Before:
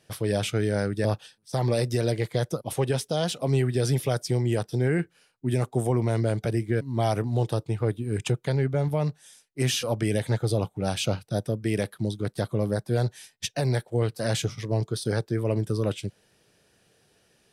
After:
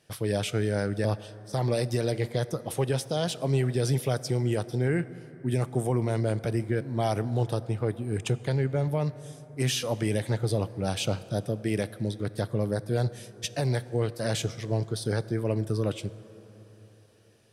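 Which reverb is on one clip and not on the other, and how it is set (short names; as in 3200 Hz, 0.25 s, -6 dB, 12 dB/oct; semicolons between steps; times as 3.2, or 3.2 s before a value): plate-style reverb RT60 4.1 s, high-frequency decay 0.4×, DRR 15.5 dB; gain -2 dB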